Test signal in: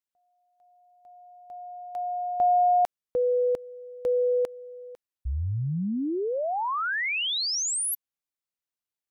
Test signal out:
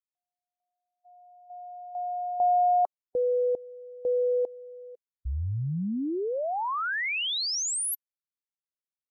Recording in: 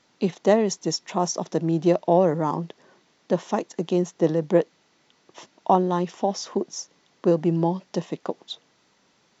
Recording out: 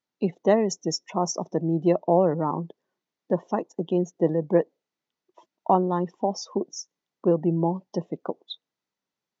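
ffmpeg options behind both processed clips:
ffmpeg -i in.wav -af "afftdn=noise_reduction=24:noise_floor=-36,volume=-1.5dB" out.wav

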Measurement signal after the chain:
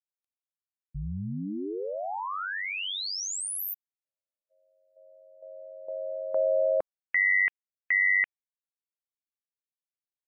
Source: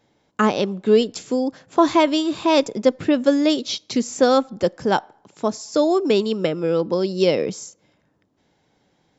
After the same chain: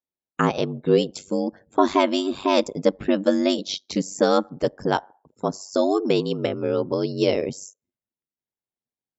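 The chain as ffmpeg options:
ffmpeg -i in.wav -af "afftdn=noise_reduction=33:noise_floor=-44,aeval=exprs='val(0)*sin(2*PI*48*n/s)':channel_layout=same" out.wav

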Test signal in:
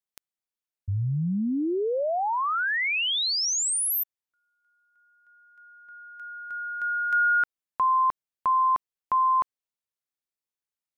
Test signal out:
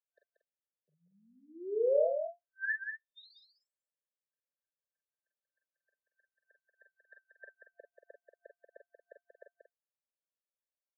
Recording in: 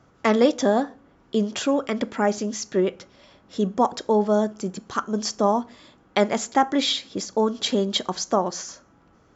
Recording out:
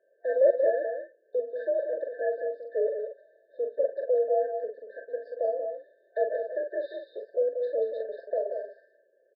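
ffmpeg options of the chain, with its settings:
ffmpeg -i in.wav -filter_complex "[0:a]afftfilt=real='re*(1-between(b*sr/4096,640,1500))':imag='im*(1-between(b*sr/4096,640,1500))':win_size=4096:overlap=0.75,aecho=1:1:2.2:0.76,highpass=frequency=440:width_type=q:width=0.5412,highpass=frequency=440:width_type=q:width=1.307,lowpass=frequency=2200:width_type=q:width=0.5176,lowpass=frequency=2200:width_type=q:width=0.7071,lowpass=frequency=2200:width_type=q:width=1.932,afreqshift=55,asplit=2[link_01][link_02];[link_02]aecho=0:1:40|47|184|231:0.422|0.376|0.473|0.251[link_03];[link_01][link_03]amix=inputs=2:normalize=0,afftfilt=real='re*eq(mod(floor(b*sr/1024/1800),2),0)':imag='im*eq(mod(floor(b*sr/1024/1800),2),0)':win_size=1024:overlap=0.75,volume=-4.5dB" out.wav

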